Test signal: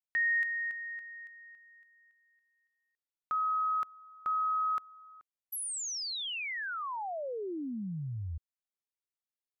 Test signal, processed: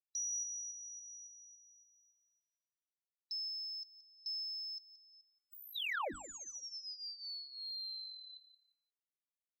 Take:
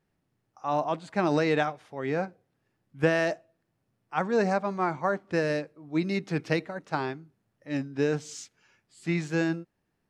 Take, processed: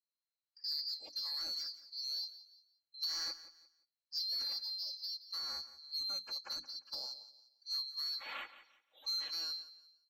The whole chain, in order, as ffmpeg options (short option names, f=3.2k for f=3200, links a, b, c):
-filter_complex "[0:a]afftfilt=real='real(if(lt(b,736),b+184*(1-2*mod(floor(b/184),2)),b),0)':imag='imag(if(lt(b,736),b+184*(1-2*mod(floor(b/184),2)),b),0)':win_size=2048:overlap=0.75,bandreject=f=50:t=h:w=6,bandreject=f=100:t=h:w=6,bandreject=f=150:t=h:w=6,bandreject=f=200:t=h:w=6,bandreject=f=250:t=h:w=6,bandreject=f=300:t=h:w=6,afftdn=nr=20:nf=-52,acrossover=split=410 3800:gain=0.224 1 0.112[a][b][c];[a][b][c]amix=inputs=3:normalize=0,aecho=1:1:3.6:0.65,acompressor=threshold=-33dB:ratio=12:attack=10:release=38:knee=6:detection=rms,asoftclip=type=tanh:threshold=-29.5dB,aecho=1:1:174|348|522:0.178|0.0445|0.0111,adynamicequalizer=threshold=0.00224:dfrequency=2600:dqfactor=0.7:tfrequency=2600:tqfactor=0.7:attack=5:release=100:ratio=0.375:range=3:mode=cutabove:tftype=highshelf,volume=1dB"